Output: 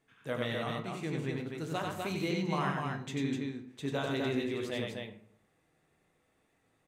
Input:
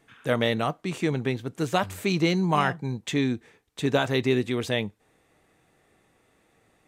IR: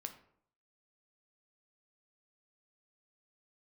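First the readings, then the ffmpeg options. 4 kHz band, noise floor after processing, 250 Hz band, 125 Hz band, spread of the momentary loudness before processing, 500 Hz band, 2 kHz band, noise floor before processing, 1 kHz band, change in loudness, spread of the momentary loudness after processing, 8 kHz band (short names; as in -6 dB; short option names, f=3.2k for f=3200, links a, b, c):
-9.5 dB, -74 dBFS, -8.0 dB, -8.5 dB, 7 LU, -9.0 dB, -9.0 dB, -66 dBFS, -9.0 dB, -9.0 dB, 7 LU, -9.5 dB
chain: -filter_complex "[0:a]aecho=1:1:93.29|250.7:0.708|0.631[a];[1:a]atrim=start_sample=2205[b];[a][b]afir=irnorm=-1:irlink=0,volume=-8.5dB"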